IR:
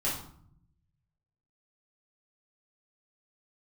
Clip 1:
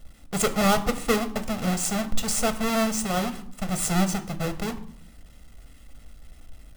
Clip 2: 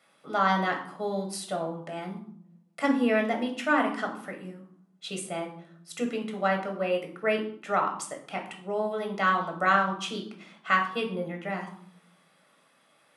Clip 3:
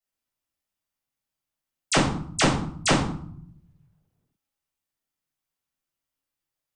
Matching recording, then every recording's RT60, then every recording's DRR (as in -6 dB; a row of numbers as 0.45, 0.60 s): 3; 0.65, 0.60, 0.60 s; 9.0, 2.0, -7.5 dB